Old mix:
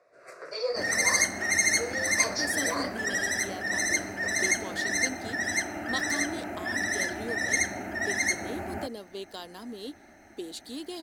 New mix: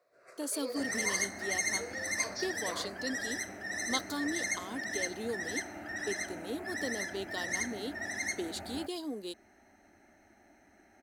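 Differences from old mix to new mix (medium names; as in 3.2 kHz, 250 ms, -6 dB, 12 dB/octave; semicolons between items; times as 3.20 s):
speech: entry -2.00 s; first sound -9.0 dB; second sound -8.5 dB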